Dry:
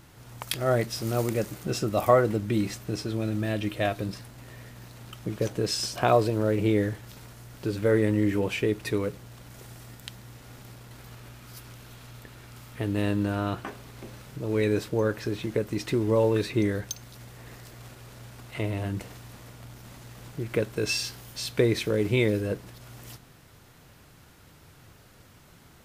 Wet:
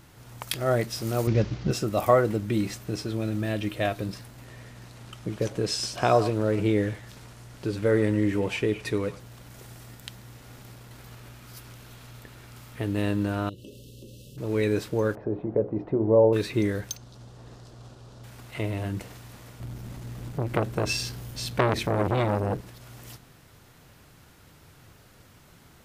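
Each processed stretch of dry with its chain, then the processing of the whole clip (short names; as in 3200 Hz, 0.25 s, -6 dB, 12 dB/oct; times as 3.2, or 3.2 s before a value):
1.27–1.71 CVSD 32 kbps + bell 65 Hz +13.5 dB 2.8 oct
4.45–9.2 LPF 11000 Hz + delay with a stepping band-pass 0.105 s, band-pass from 950 Hz, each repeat 1.4 oct, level -9.5 dB
13.49–14.38 brick-wall FIR band-stop 600–2600 Hz + compressor 2.5:1, threshold -42 dBFS
15.15–16.33 synth low-pass 700 Hz, resonance Q 2.3 + notches 60/120/180/240/300/360/420/480/540 Hz
16.97–18.24 LPF 5600 Hz + bell 2100 Hz -13.5 dB 0.88 oct
19.6–22.61 low shelf 430 Hz +10.5 dB + core saturation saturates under 1300 Hz
whole clip: dry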